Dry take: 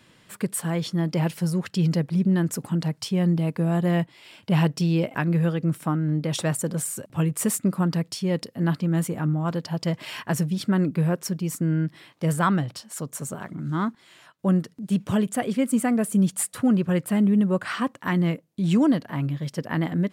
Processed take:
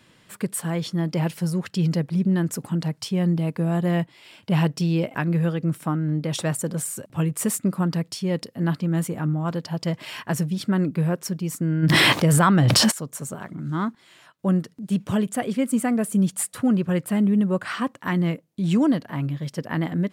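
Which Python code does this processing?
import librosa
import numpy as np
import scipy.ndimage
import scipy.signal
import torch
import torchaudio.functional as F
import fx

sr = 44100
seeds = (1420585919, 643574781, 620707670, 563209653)

y = fx.env_flatten(x, sr, amount_pct=100, at=(11.82, 12.9), fade=0.02)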